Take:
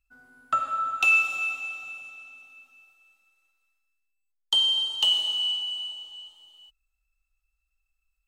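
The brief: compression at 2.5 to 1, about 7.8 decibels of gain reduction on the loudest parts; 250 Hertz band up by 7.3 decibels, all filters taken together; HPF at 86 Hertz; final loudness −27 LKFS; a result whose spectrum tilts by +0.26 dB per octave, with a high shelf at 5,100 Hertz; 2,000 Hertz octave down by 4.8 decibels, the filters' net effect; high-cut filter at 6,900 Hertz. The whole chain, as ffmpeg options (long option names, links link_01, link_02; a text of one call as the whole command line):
ffmpeg -i in.wav -af "highpass=86,lowpass=6900,equalizer=frequency=250:width_type=o:gain=9,equalizer=frequency=2000:width_type=o:gain=-6,highshelf=frequency=5100:gain=-5.5,acompressor=threshold=-34dB:ratio=2.5,volume=6.5dB" out.wav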